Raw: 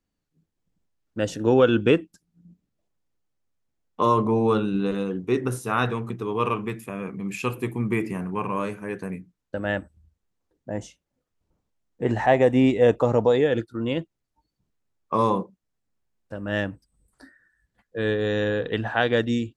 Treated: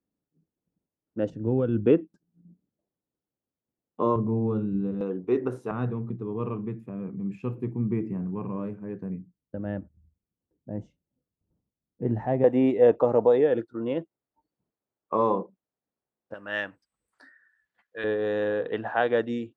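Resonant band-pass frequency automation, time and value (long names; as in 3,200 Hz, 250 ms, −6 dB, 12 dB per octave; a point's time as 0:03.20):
resonant band-pass, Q 0.73
320 Hz
from 0:01.30 110 Hz
from 0:01.86 320 Hz
from 0:04.16 120 Hz
from 0:05.01 490 Hz
from 0:05.71 160 Hz
from 0:12.44 530 Hz
from 0:16.34 1,700 Hz
from 0:18.04 680 Hz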